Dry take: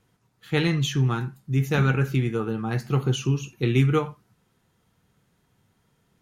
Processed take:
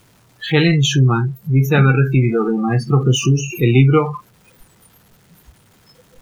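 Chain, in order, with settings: jump at every zero crossing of -24.5 dBFS; spectral noise reduction 29 dB; trim +7 dB

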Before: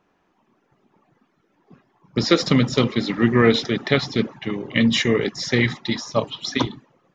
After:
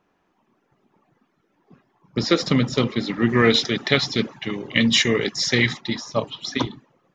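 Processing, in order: 3.29–5.81 s: treble shelf 2.3 kHz +9 dB; trim -2 dB

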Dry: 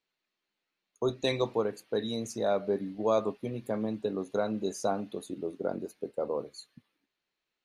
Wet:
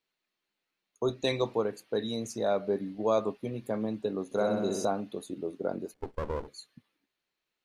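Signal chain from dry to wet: 4.25–4.85 s: flutter echo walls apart 10.9 m, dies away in 1.1 s; 5.94–6.48 s: sliding maximum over 33 samples

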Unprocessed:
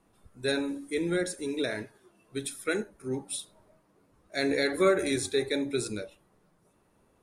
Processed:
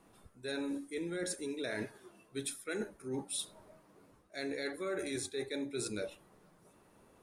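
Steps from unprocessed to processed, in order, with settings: bass shelf 110 Hz -6 dB; reverse; compression 12:1, threshold -39 dBFS, peak gain reduction 20.5 dB; reverse; trim +4 dB

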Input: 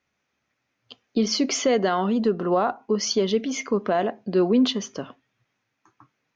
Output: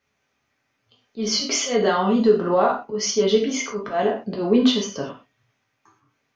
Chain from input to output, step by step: slow attack 123 ms; gated-style reverb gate 150 ms falling, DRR -2 dB

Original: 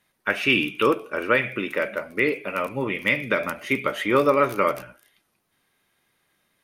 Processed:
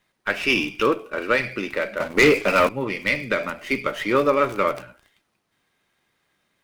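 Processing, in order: 2.00–2.69 s: waveshaping leveller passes 3; sliding maximum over 3 samples

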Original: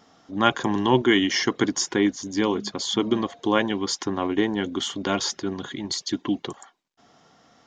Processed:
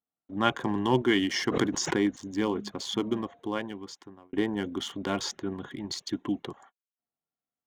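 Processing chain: local Wiener filter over 9 samples; gate -49 dBFS, range -36 dB; bass shelf 120 Hz +4 dB; 1.48–2.23 s: swell ahead of each attack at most 55 dB/s; 2.87–4.33 s: fade out; trim -5.5 dB

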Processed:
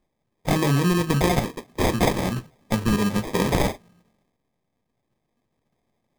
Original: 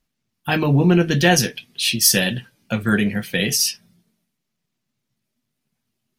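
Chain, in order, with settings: treble shelf 6.8 kHz +9.5 dB; compression 16:1, threshold -16 dBFS, peak gain reduction 13 dB; sample-and-hold 31×

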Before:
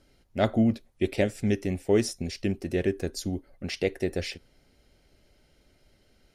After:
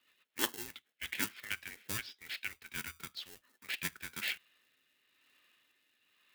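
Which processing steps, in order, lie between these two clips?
bass shelf 340 Hz -11 dB; mistuned SSB -310 Hz 320–3600 Hz; rotary cabinet horn 8 Hz, later 1 Hz, at 0.55 s; in parallel at -7 dB: sample-and-hold 37×; on the sum: differentiator; trim +13.5 dB

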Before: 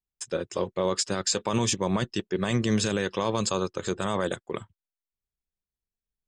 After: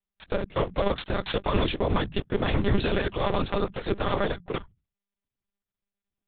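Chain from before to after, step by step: cycle switcher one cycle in 3, muted; hum notches 60/120/180 Hz; monotone LPC vocoder at 8 kHz 200 Hz; trim +4 dB

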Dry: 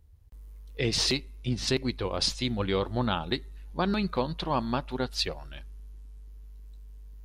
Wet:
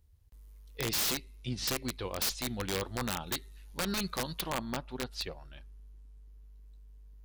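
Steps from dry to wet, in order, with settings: treble shelf 2.1 kHz +6.5 dB, from 3.27 s +12 dB, from 4.50 s -2 dB; integer overflow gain 17.5 dB; trim -7 dB

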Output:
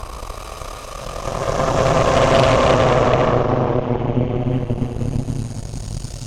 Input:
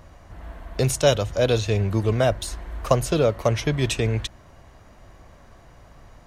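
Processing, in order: low-pass that closes with the level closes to 2.5 kHz, closed at -15 dBFS; Paulstretch 30×, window 0.10 s, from 2.84 s; Chebyshev shaper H 8 -10 dB, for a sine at -2.5 dBFS; peaking EQ 1.7 kHz -7 dB 0.95 oct

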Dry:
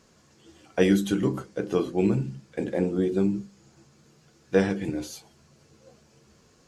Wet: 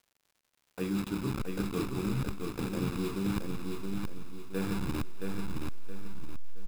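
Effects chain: send-on-delta sampling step -25.5 dBFS; band-stop 6.2 kHz, Q 8.8; comb 0.8 ms, depth 58%; reverse; compression 6:1, threshold -39 dBFS, peak gain reduction 23.5 dB; reverse; crackle 140 per s -62 dBFS; on a send: thinning echo 210 ms, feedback 70%, high-pass 430 Hz, level -20 dB; on the sum: bit-crushed delay 671 ms, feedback 35%, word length 11-bit, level -4 dB; trim +7.5 dB

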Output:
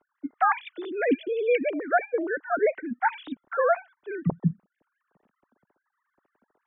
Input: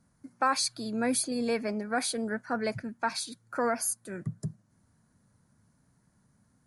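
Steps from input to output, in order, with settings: formants replaced by sine waves; trim +5 dB

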